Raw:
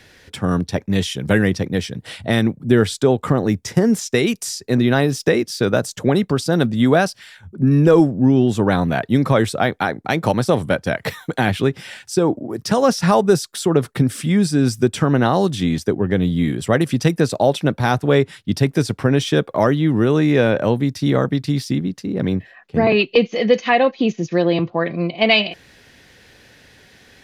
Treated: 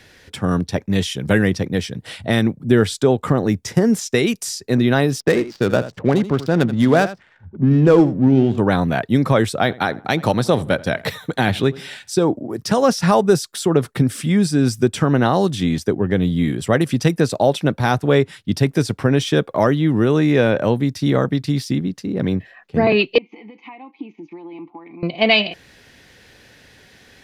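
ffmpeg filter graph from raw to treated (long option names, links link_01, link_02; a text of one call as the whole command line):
ffmpeg -i in.wav -filter_complex "[0:a]asettb=1/sr,asplit=3[link_01][link_02][link_03];[link_01]atrim=end=5.204[link_04];[link_02]atrim=start=5.2:end=8.58,asetpts=PTS-STARTPTS,afade=type=in:duration=0.004:curve=qsin,afade=type=out:start_time=3.376:duration=0.004:curve=qsin,adynamicsmooth=sensitivity=2.5:basefreq=790,aecho=1:1:82:0.2,atrim=end_sample=149058[link_05];[link_03]atrim=start=8.576[link_06];[link_04][link_05]acrossfade=duration=0.004:curve1=hsin:curve2=qsin[link_07];[link_07][link_06]acrossfade=duration=0.004:curve1=qsin:curve2=hsin,asettb=1/sr,asplit=3[link_08][link_09][link_10];[link_08]atrim=end=9.614[link_11];[link_09]atrim=start=9.61:end=12.25,asetpts=PTS-STARTPTS,afade=type=in:duration=0.004:curve=qsin,afade=type=out:start_time=2.636:duration=0.004:curve=qsin,equalizer=frequency=3800:width=5.7:gain=6.5,asplit=2[link_12][link_13];[link_13]adelay=84,lowpass=frequency=2100:poles=1,volume=-20dB,asplit=2[link_14][link_15];[link_15]adelay=84,lowpass=frequency=2100:poles=1,volume=0.38,asplit=2[link_16][link_17];[link_17]adelay=84,lowpass=frequency=2100:poles=1,volume=0.38[link_18];[link_12][link_14][link_16][link_18]amix=inputs=4:normalize=0,atrim=end_sample=116424[link_19];[link_10]atrim=start=12.246[link_20];[link_11][link_19]acrossfade=duration=0.004:curve1=hsin:curve2=qsin[link_21];[link_21][link_20]acrossfade=duration=0.004:curve1=qsin:curve2=hsin,asettb=1/sr,asplit=3[link_22][link_23][link_24];[link_22]atrim=end=23.184[link_25];[link_23]atrim=start=23.18:end=25.03,asetpts=PTS-STARTPTS,afade=type=in:duration=0.004:curve=qsin,afade=type=out:start_time=1.846:duration=0.004:curve=qsin,equalizer=frequency=1100:width=0.44:gain=10.5,acompressor=threshold=-21dB:ratio=4:attack=3.2:release=140:knee=1:detection=peak,asplit=3[link_26][link_27][link_28];[link_26]bandpass=frequency=300:width_type=q:width=8,volume=0dB[link_29];[link_27]bandpass=frequency=870:width_type=q:width=8,volume=-6dB[link_30];[link_28]bandpass=frequency=2240:width_type=q:width=8,volume=-9dB[link_31];[link_29][link_30][link_31]amix=inputs=3:normalize=0[link_32];[link_24]atrim=start=25.026[link_33];[link_25][link_32]acrossfade=duration=0.004:curve1=hsin:curve2=qsin[link_34];[link_34][link_33]acrossfade=duration=0.004:curve1=qsin:curve2=hsin" out.wav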